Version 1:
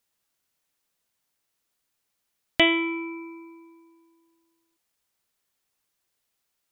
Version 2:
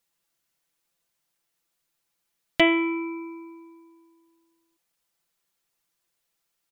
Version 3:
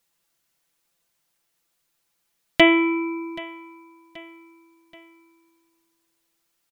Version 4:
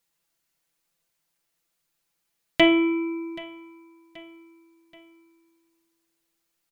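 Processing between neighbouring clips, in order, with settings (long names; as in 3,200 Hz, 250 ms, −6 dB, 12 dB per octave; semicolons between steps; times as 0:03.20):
comb filter 5.9 ms; level −1.5 dB
repeating echo 779 ms, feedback 46%, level −20 dB; level +4.5 dB
rectangular room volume 480 cubic metres, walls furnished, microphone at 0.57 metres; level −4 dB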